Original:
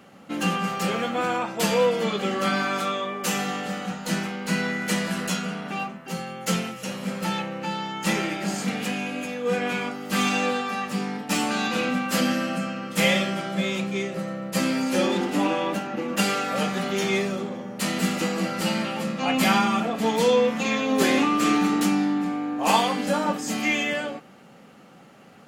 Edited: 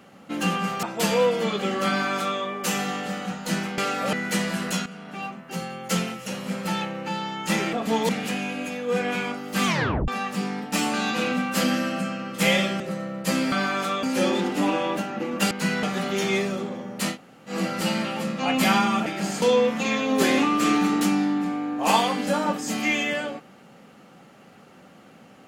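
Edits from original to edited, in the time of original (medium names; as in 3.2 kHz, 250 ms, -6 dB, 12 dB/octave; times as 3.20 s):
0.83–1.43 s: delete
2.48–2.99 s: copy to 14.80 s
4.38–4.70 s: swap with 16.28–16.63 s
5.43–6.08 s: fade in, from -12.5 dB
8.30–8.66 s: swap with 19.86–20.22 s
10.23 s: tape stop 0.42 s
13.37–14.08 s: delete
17.93–18.31 s: room tone, crossfade 0.10 s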